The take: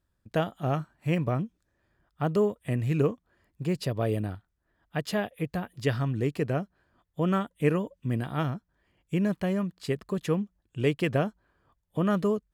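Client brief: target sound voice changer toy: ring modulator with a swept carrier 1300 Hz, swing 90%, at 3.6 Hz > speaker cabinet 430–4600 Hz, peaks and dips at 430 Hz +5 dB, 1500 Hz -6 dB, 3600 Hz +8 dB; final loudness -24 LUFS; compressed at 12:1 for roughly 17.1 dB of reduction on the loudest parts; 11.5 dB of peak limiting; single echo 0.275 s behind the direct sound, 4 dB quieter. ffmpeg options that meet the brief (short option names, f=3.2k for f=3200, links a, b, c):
-af "acompressor=threshold=-37dB:ratio=12,alimiter=level_in=13.5dB:limit=-24dB:level=0:latency=1,volume=-13.5dB,aecho=1:1:275:0.631,aeval=exprs='val(0)*sin(2*PI*1300*n/s+1300*0.9/3.6*sin(2*PI*3.6*n/s))':c=same,highpass=430,equalizer=f=430:t=q:w=4:g=5,equalizer=f=1.5k:t=q:w=4:g=-6,equalizer=f=3.6k:t=q:w=4:g=8,lowpass=f=4.6k:w=0.5412,lowpass=f=4.6k:w=1.3066,volume=24dB"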